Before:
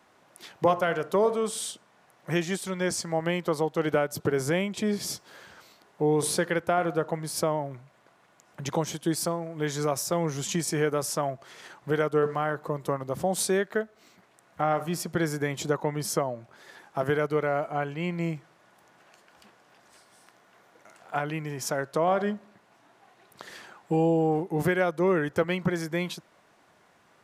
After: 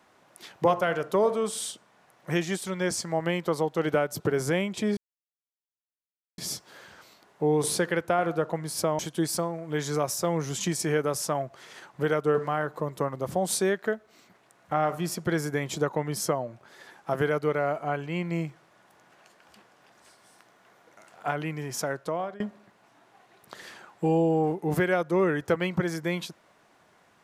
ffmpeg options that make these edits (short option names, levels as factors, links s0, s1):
-filter_complex "[0:a]asplit=4[s0][s1][s2][s3];[s0]atrim=end=4.97,asetpts=PTS-STARTPTS,afade=t=out:st=4.966:d=0.004:c=hsin,apad=pad_dur=1.41[s4];[s1]atrim=start=4.97:end=7.582,asetpts=PTS-STARTPTS,afade=t=in:d=0.004:c=hsin[s5];[s2]atrim=start=8.868:end=22.28,asetpts=PTS-STARTPTS,afade=t=out:st=12.642:d=0.77:c=qsin:silence=0.0749894[s6];[s3]atrim=start=22.28,asetpts=PTS-STARTPTS,afade=t=in:d=0.004:c=hsin:silence=0.0749894[s7];[s4][s5]concat=n=2:v=0:a=1[s8];[s6][s7]concat=n=2:v=0:a=1[s9];[s8][s9]acrossfade=d=0.004:c1=hsin:c2=hsin"